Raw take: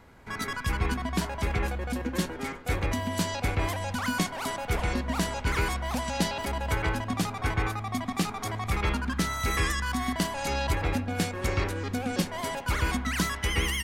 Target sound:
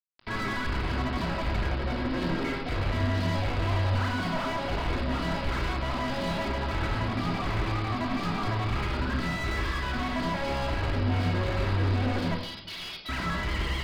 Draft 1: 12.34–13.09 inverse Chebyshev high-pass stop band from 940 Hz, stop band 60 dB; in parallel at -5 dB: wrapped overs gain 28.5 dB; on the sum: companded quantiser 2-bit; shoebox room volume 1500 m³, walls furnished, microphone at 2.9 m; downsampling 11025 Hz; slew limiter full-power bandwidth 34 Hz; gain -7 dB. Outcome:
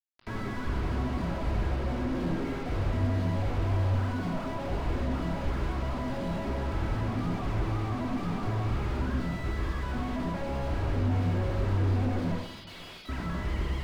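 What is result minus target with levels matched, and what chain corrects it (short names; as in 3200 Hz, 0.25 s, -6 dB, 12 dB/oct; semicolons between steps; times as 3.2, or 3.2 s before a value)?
slew limiter: distortion +11 dB
12.34–13.09 inverse Chebyshev high-pass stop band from 940 Hz, stop band 60 dB; in parallel at -5 dB: wrapped overs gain 28.5 dB; on the sum: companded quantiser 2-bit; shoebox room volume 1500 m³, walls furnished, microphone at 2.9 m; downsampling 11025 Hz; slew limiter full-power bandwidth 120.5 Hz; gain -7 dB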